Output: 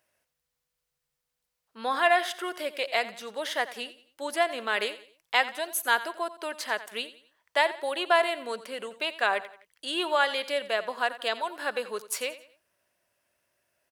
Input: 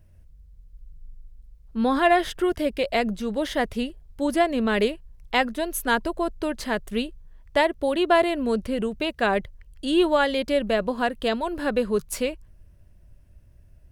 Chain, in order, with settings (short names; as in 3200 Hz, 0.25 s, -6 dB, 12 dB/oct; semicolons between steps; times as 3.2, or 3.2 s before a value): HPF 790 Hz 12 dB/oct; on a send: feedback echo 88 ms, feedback 38%, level -15.5 dB